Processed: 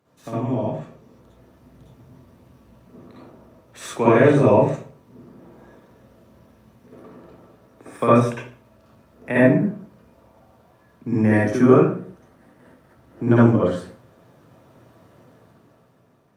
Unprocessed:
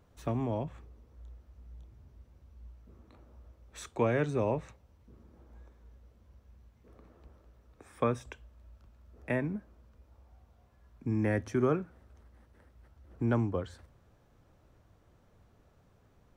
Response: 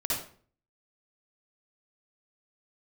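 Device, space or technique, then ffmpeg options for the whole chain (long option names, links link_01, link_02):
far-field microphone of a smart speaker: -filter_complex "[0:a]asettb=1/sr,asplit=3[link_01][link_02][link_03];[link_01]atrim=end=4.144[link_04];[link_02]atrim=start=4.14:end=4.67,asetpts=PTS-STARTPTS,afade=type=in:duration=0.004:curve=qsin,afade=type=out:start_time=0.526:duration=0.004:curve=qsin,equalizer=frequency=70:width_type=o:width=1.6:gain=2.5[link_05];[link_03]atrim=start=4.666[link_06];[link_04][link_05]acrossfade=duration=0.004:curve1=hsin:curve2=qsin[link_07];[link_07][link_06]acrossfade=duration=0.004:curve1=qsin:curve2=hsin[link_08];[1:a]atrim=start_sample=2205[link_09];[link_08][link_09]afir=irnorm=-1:irlink=0,highpass=frequency=130:width=0.5412,highpass=frequency=130:width=1.3066,dynaudnorm=framelen=160:gausssize=13:maxgain=10dB" -ar 48000 -c:a libopus -b:a 48k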